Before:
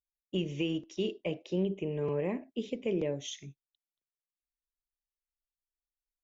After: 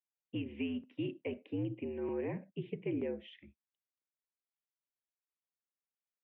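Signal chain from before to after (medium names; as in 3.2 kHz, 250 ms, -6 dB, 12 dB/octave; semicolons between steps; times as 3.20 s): mistuned SSB -70 Hz 210–2800 Hz; trim -4 dB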